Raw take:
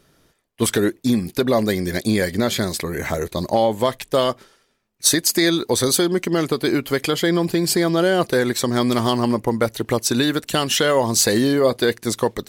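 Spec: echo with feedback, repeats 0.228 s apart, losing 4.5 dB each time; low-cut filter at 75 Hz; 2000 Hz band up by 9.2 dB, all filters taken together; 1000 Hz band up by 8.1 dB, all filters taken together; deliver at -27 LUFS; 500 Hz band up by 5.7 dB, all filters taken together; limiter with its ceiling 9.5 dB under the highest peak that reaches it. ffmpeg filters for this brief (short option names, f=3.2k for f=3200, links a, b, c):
-af "highpass=75,equalizer=f=500:t=o:g=5,equalizer=f=1k:t=o:g=6.5,equalizer=f=2k:t=o:g=9,alimiter=limit=-7.5dB:level=0:latency=1,aecho=1:1:228|456|684|912|1140|1368|1596|1824|2052:0.596|0.357|0.214|0.129|0.0772|0.0463|0.0278|0.0167|0.01,volume=-10dB"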